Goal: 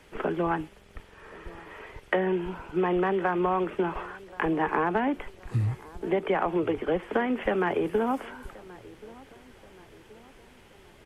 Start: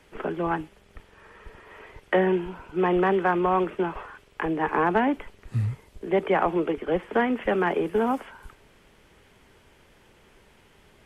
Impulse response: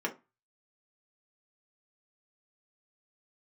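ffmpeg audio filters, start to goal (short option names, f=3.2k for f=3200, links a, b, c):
-filter_complex "[0:a]acompressor=threshold=-24dB:ratio=6,asplit=2[a][b];[b]adelay=1078,lowpass=f=2k:p=1,volume=-21dB,asplit=2[c][d];[d]adelay=1078,lowpass=f=2k:p=1,volume=0.49,asplit=2[e][f];[f]adelay=1078,lowpass=f=2k:p=1,volume=0.49,asplit=2[g][h];[h]adelay=1078,lowpass=f=2k:p=1,volume=0.49[i];[a][c][e][g][i]amix=inputs=5:normalize=0,volume=2dB"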